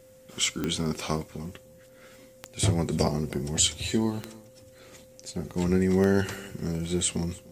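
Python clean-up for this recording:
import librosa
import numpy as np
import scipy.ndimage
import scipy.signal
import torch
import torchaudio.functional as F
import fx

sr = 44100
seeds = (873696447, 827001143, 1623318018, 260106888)

y = fx.fix_declick_ar(x, sr, threshold=10.0)
y = fx.notch(y, sr, hz=520.0, q=30.0)
y = fx.fix_echo_inverse(y, sr, delay_ms=299, level_db=-22.0)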